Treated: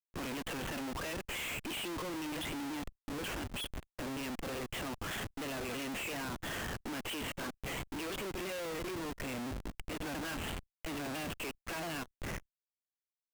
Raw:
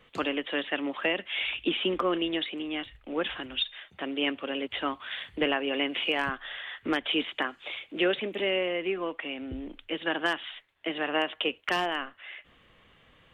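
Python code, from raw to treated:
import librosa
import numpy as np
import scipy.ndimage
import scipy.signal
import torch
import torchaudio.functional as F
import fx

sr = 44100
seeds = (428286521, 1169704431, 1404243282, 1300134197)

y = fx.pitch_ramps(x, sr, semitones=-2.0, every_ms=338)
y = fx.schmitt(y, sr, flips_db=-39.5)
y = fx.level_steps(y, sr, step_db=17)
y = F.gain(torch.from_numpy(y), -5.0).numpy()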